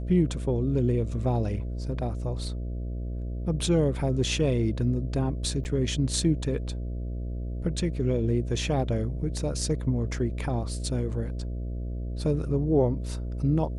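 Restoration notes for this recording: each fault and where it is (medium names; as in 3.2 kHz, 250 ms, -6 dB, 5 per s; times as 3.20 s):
buzz 60 Hz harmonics 11 -32 dBFS
5.64–5.65 s: dropout 9.8 ms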